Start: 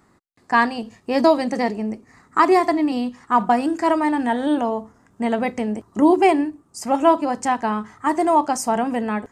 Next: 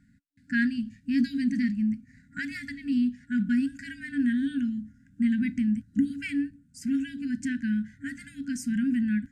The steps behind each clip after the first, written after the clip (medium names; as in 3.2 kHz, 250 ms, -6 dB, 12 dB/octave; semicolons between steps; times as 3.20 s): FFT band-reject 280–1400 Hz; tilt shelf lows +6.5 dB, about 1.4 kHz; trim -6 dB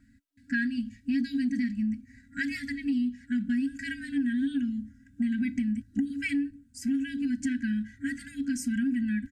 comb 3.1 ms, depth 95%; compression 6:1, threshold -25 dBFS, peak gain reduction 10 dB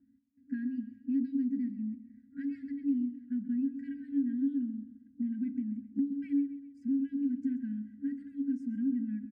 band-pass filter 310 Hz, Q 2.9; feedback delay 132 ms, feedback 47%, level -14 dB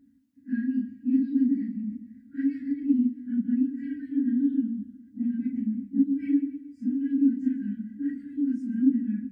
phase randomisation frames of 100 ms; trim +6.5 dB